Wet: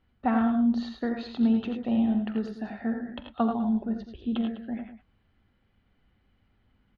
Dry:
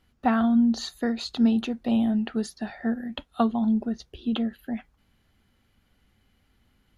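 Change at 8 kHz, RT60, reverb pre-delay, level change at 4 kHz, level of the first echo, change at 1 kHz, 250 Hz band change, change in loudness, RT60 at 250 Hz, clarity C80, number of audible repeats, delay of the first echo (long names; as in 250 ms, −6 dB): can't be measured, no reverb audible, no reverb audible, −8.5 dB, −16.5 dB, −2.0 dB, −2.0 dB, −2.0 dB, no reverb audible, no reverb audible, 3, 45 ms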